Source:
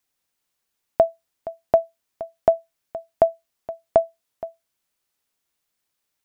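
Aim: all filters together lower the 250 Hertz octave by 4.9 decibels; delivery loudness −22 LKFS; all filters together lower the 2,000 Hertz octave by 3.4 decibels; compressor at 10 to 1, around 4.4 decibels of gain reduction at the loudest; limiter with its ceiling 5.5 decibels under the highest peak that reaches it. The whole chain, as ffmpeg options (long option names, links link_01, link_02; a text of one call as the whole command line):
ffmpeg -i in.wav -af "equalizer=frequency=250:width_type=o:gain=-7,equalizer=frequency=2000:width_type=o:gain=-4.5,acompressor=threshold=-16dB:ratio=10,volume=11.5dB,alimiter=limit=-0.5dB:level=0:latency=1" out.wav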